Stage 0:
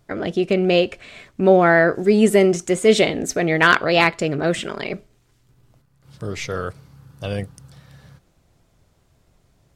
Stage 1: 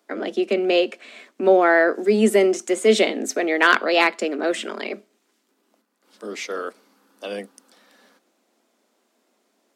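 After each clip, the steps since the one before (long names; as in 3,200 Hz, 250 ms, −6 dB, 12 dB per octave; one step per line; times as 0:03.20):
Butterworth high-pass 210 Hz 96 dB per octave
level −1.5 dB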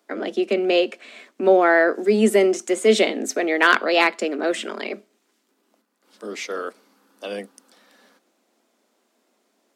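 hard clipping −2.5 dBFS, distortion −47 dB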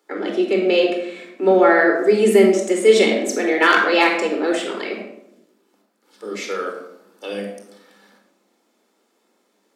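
convolution reverb RT60 0.85 s, pre-delay 22 ms, DRR 2 dB
level −1.5 dB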